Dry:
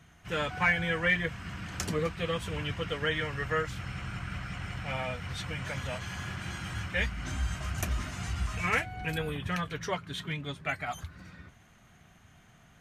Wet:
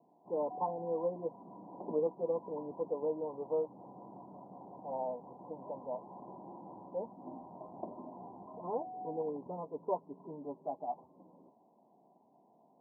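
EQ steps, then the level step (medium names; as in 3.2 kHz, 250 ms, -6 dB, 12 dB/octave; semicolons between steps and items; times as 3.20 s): high-pass 270 Hz 24 dB/octave; Chebyshev low-pass 1 kHz, order 8; +1.0 dB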